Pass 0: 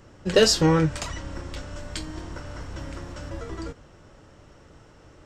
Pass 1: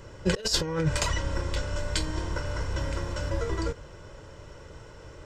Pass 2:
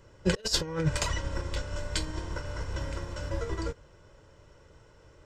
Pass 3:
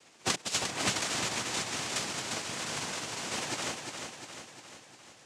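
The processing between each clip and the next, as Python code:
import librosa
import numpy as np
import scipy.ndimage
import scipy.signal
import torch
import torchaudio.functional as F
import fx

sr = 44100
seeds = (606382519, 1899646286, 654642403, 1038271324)

y1 = x + 0.48 * np.pad(x, (int(2.0 * sr / 1000.0), 0))[:len(x)]
y1 = fx.over_compress(y1, sr, threshold_db=-23.0, ratio=-0.5)
y2 = fx.upward_expand(y1, sr, threshold_db=-41.0, expansion=1.5)
y3 = fx.spec_flatten(y2, sr, power=0.29)
y3 = fx.noise_vocoder(y3, sr, seeds[0], bands=4)
y3 = fx.echo_feedback(y3, sr, ms=352, feedback_pct=56, wet_db=-6.0)
y3 = y3 * librosa.db_to_amplitude(-2.5)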